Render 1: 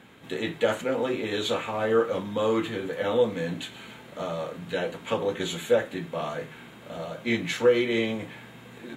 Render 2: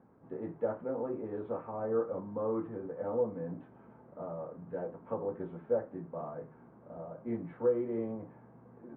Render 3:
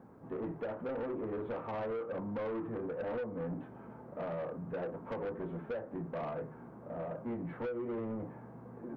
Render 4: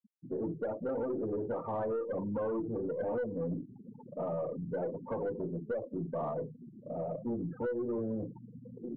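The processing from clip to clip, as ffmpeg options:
ffmpeg -i in.wav -af "lowpass=frequency=1100:width=0.5412,lowpass=frequency=1100:width=1.3066,volume=-8.5dB" out.wav
ffmpeg -i in.wav -af "acompressor=threshold=-35dB:ratio=12,asoftclip=type=tanh:threshold=-40dB,volume=6.5dB" out.wav
ffmpeg -i in.wav -af "afftfilt=real='re*gte(hypot(re,im),0.0158)':imag='im*gte(hypot(re,im),0.0158)':win_size=1024:overlap=0.75,aeval=exprs='0.0299*(cos(1*acos(clip(val(0)/0.0299,-1,1)))-cos(1*PI/2))+0.00075*(cos(4*acos(clip(val(0)/0.0299,-1,1)))-cos(4*PI/2))':channel_layout=same,volume=3.5dB" out.wav

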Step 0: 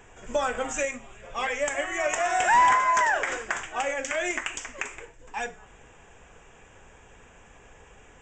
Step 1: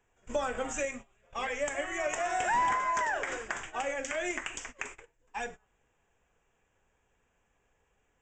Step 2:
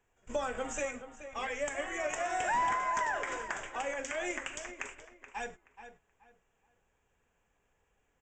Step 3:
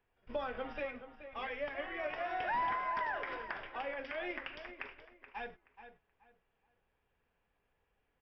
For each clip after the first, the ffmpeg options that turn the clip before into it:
ffmpeg -i in.wav -filter_complex "[0:a]agate=range=-19dB:threshold=-39dB:ratio=16:detection=peak,acrossover=split=490[link_01][link_02];[link_02]acompressor=threshold=-36dB:ratio=1.5[link_03];[link_01][link_03]amix=inputs=2:normalize=0,volume=-2.5dB" out.wav
ffmpeg -i in.wav -filter_complex "[0:a]asplit=2[link_01][link_02];[link_02]adelay=427,lowpass=frequency=3000:poles=1,volume=-11dB,asplit=2[link_03][link_04];[link_04]adelay=427,lowpass=frequency=3000:poles=1,volume=0.26,asplit=2[link_05][link_06];[link_06]adelay=427,lowpass=frequency=3000:poles=1,volume=0.26[link_07];[link_01][link_03][link_05][link_07]amix=inputs=4:normalize=0,volume=-2.5dB" out.wav
ffmpeg -i in.wav -af "aresample=11025,aresample=44100,volume=-4dB" out.wav

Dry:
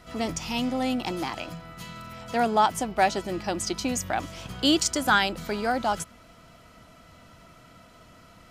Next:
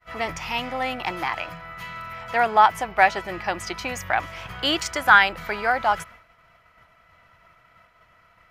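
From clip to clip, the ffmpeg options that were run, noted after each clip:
ffmpeg -i in.wav -af "agate=range=-33dB:threshold=-44dB:ratio=3:detection=peak,equalizer=frequency=250:width_type=o:width=1:gain=-11,equalizer=frequency=1000:width_type=o:width=1:gain=5,equalizer=frequency=2000:width_type=o:width=1:gain=10,equalizer=frequency=4000:width_type=o:width=1:gain=-3,equalizer=frequency=8000:width_type=o:width=1:gain=-9,volume=1dB" out.wav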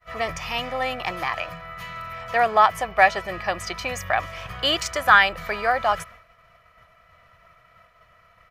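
ffmpeg -i in.wav -af "aecho=1:1:1.7:0.45" out.wav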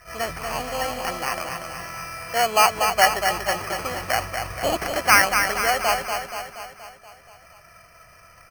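ffmpeg -i in.wav -filter_complex "[0:a]acrusher=samples=12:mix=1:aa=0.000001,asplit=2[link_01][link_02];[link_02]aecho=0:1:238|476|714|952|1190|1428|1666:0.501|0.286|0.163|0.0928|0.0529|0.0302|0.0172[link_03];[link_01][link_03]amix=inputs=2:normalize=0,acompressor=mode=upward:threshold=-41dB:ratio=2.5,volume=-1dB" out.wav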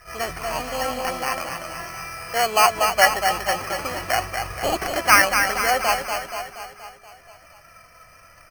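ffmpeg -i in.wav -af "flanger=delay=2.4:depth=1.5:regen=63:speed=0.44:shape=sinusoidal,volume=5dB" out.wav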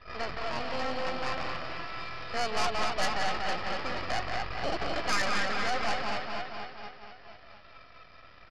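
ffmpeg -i in.wav -af "aresample=11025,aeval=exprs='max(val(0),0)':channel_layout=same,aresample=44100,aecho=1:1:178:0.422,aeval=exprs='(tanh(7.08*val(0)+0.55)-tanh(0.55))/7.08':channel_layout=same,volume=2.5dB" out.wav

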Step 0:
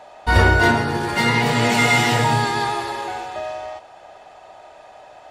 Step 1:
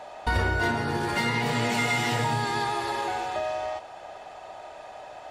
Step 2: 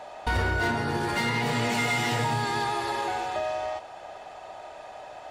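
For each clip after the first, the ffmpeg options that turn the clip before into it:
ffmpeg -i in.wav -af "acompressor=threshold=-27dB:ratio=3,volume=1dB" out.wav
ffmpeg -i in.wav -af "asoftclip=type=hard:threshold=-20.5dB" out.wav

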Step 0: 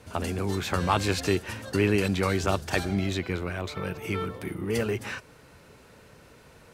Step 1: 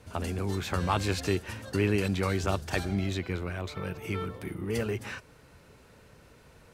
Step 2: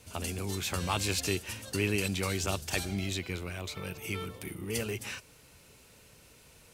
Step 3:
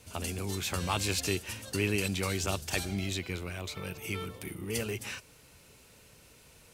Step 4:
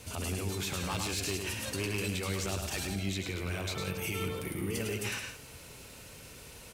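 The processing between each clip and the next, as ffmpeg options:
ffmpeg -i in.wav -af "lowshelf=frequency=92:gain=6.5,volume=-4dB" out.wav
ffmpeg -i in.wav -af "aexciter=amount=1.6:drive=8.9:freq=2300,volume=-4.5dB" out.wav
ffmpeg -i in.wav -af anull out.wav
ffmpeg -i in.wav -af "aeval=exprs='0.0794*(abs(mod(val(0)/0.0794+3,4)-2)-1)':channel_layout=same,alimiter=level_in=9dB:limit=-24dB:level=0:latency=1:release=122,volume=-9dB,aecho=1:1:105|172:0.562|0.282,volume=6.5dB" out.wav

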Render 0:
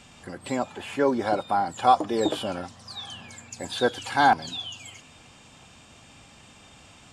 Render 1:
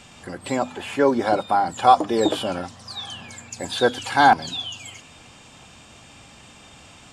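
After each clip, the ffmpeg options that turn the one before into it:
ffmpeg -i in.wav -af "bandreject=frequency=50:width_type=h:width=6,bandreject=frequency=100:width_type=h:width=6,bandreject=frequency=150:width_type=h:width=6,bandreject=frequency=200:width_type=h:width=6,bandreject=frequency=250:width_type=h:width=6,volume=4.5dB" out.wav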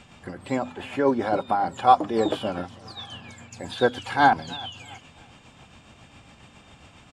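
ffmpeg -i in.wav -af "aecho=1:1:326|652|978:0.0841|0.0294|0.0103,tremolo=f=7.3:d=0.43,bass=frequency=250:gain=3,treble=frequency=4000:gain=-8,volume=-1.5dB" out.wav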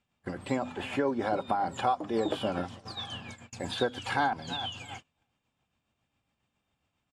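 ffmpeg -i in.wav -af "acompressor=threshold=-25dB:ratio=6,agate=range=-29dB:threshold=-43dB:ratio=16:detection=peak" out.wav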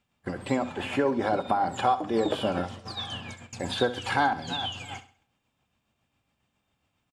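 ffmpeg -i in.wav -af "aecho=1:1:66|132|198|264:0.2|0.0738|0.0273|0.0101,volume=3.5dB" out.wav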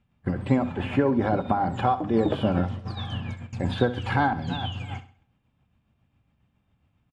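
ffmpeg -i in.wav -af "bass=frequency=250:gain=12,treble=frequency=4000:gain=-13" out.wav

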